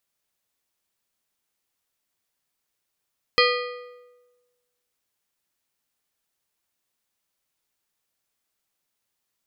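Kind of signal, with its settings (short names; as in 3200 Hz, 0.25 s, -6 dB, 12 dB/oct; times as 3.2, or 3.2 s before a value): metal hit plate, lowest mode 491 Hz, modes 8, decay 1.26 s, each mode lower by 1 dB, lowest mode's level -18 dB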